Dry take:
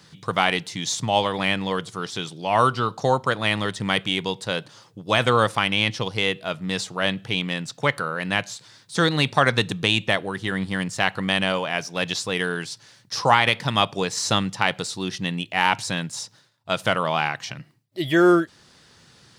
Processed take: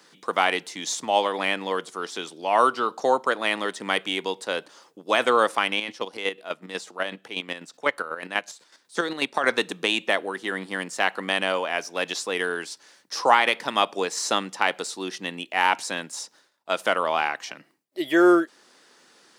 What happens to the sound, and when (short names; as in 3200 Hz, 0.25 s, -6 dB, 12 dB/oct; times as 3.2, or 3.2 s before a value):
5.76–9.44 chopper 8.1 Hz, depth 60%, duty 30%
whole clip: HPF 270 Hz 24 dB/oct; bell 3900 Hz -4.5 dB 1.2 oct